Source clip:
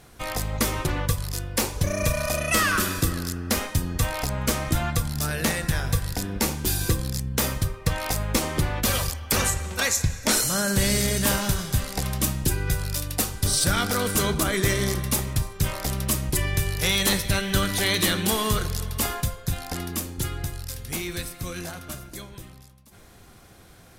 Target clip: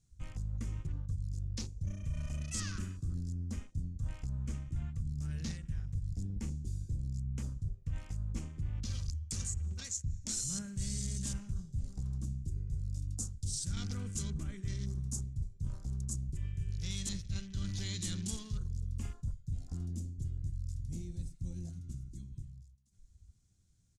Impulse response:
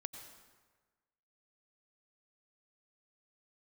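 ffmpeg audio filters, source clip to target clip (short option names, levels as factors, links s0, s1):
-af "afwtdn=0.0251,firequalizer=gain_entry='entry(100,0);entry(340,-17);entry(590,-26);entry(6900,1);entry(14000,-28)':delay=0.05:min_phase=1,areverse,acompressor=threshold=0.02:ratio=6,areverse"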